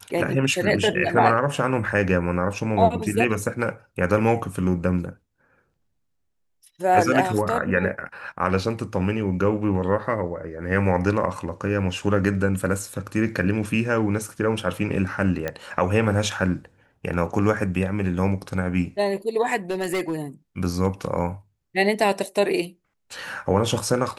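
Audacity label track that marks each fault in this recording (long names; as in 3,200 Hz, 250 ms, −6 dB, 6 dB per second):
15.480000	15.480000	click −13 dBFS
19.700000	20.140000	clipping −20.5 dBFS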